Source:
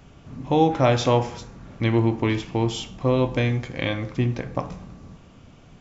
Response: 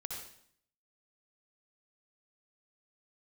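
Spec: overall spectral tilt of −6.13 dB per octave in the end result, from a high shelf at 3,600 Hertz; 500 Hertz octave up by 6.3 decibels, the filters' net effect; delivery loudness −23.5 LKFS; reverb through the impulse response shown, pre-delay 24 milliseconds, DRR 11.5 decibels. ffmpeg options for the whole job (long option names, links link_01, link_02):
-filter_complex "[0:a]equalizer=frequency=500:width_type=o:gain=7.5,highshelf=frequency=3600:gain=-5.5,asplit=2[link_01][link_02];[1:a]atrim=start_sample=2205,adelay=24[link_03];[link_02][link_03]afir=irnorm=-1:irlink=0,volume=-10.5dB[link_04];[link_01][link_04]amix=inputs=2:normalize=0,volume=-4dB"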